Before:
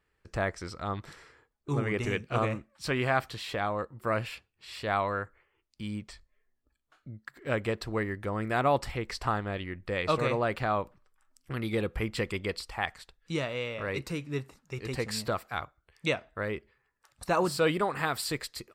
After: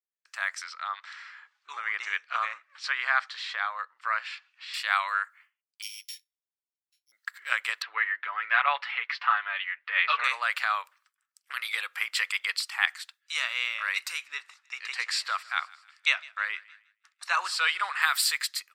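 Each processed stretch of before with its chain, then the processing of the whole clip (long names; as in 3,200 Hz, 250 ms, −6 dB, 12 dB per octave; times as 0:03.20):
0:00.64–0:04.74: dynamic equaliser 2,700 Hz, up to −7 dB, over −51 dBFS, Q 2.5 + upward compression, threshold −44 dBFS + Gaussian smoothing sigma 1.7 samples
0:05.82–0:07.12: samples sorted by size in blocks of 8 samples + Butterworth high-pass 2,300 Hz
0:07.82–0:10.24: low-pass filter 3,200 Hz 24 dB per octave + comb filter 6.9 ms, depth 73%
0:14.28–0:18.02: high-frequency loss of the air 72 metres + feedback echo with a high-pass in the loop 157 ms, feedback 65%, high-pass 910 Hz, level −22 dB
whole clip: downward expander −57 dBFS; high-pass filter 1,300 Hz 24 dB per octave; automatic gain control gain up to 7.5 dB; level +2 dB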